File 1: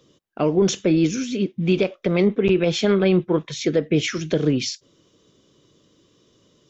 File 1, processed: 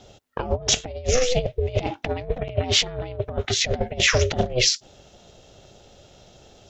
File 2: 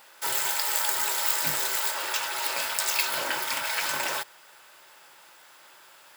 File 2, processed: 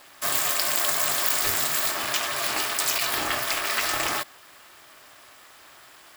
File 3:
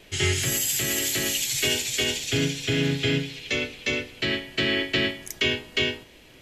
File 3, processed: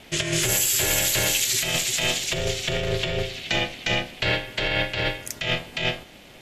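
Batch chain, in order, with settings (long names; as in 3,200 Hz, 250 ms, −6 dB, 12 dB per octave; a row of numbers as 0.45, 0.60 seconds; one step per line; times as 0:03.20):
ring modulation 250 Hz
compressor whose output falls as the input rises −28 dBFS, ratio −0.5
loudness normalisation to −23 LKFS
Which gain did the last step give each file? +5.5, +5.5, +5.5 decibels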